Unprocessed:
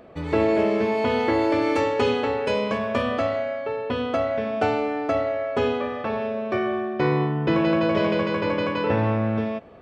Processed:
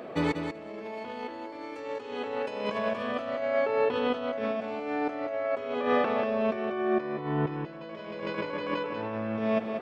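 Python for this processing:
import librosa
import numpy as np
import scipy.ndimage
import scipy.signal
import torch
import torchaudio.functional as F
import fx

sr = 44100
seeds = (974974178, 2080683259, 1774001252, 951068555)

y = scipy.signal.sosfilt(scipy.signal.butter(2, 200.0, 'highpass', fs=sr, output='sos'), x)
y = fx.over_compress(y, sr, threshold_db=-30.0, ratio=-0.5)
y = fx.echo_feedback(y, sr, ms=190, feedback_pct=15, wet_db=-7.0)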